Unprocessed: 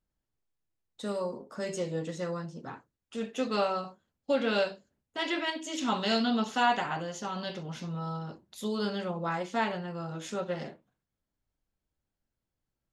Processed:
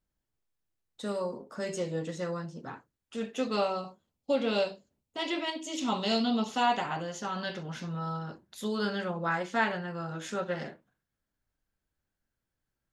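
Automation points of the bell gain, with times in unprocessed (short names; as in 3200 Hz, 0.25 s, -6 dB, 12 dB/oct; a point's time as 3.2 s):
bell 1600 Hz 0.51 oct
3.31 s +1.5 dB
3.78 s -9 dB
6.44 s -9 dB
6.97 s -1.5 dB
7.41 s +7.5 dB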